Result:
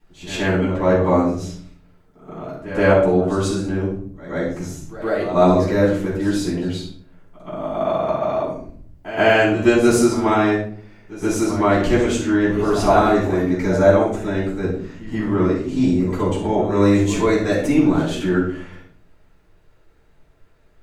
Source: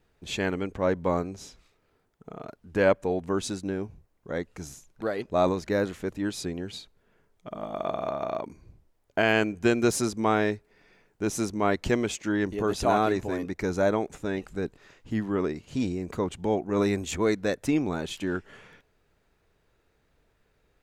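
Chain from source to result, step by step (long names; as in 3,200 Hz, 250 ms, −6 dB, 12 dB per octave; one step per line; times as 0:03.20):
echo ahead of the sound 127 ms −14 dB
rectangular room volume 680 cubic metres, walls furnished, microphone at 10 metres
level −4 dB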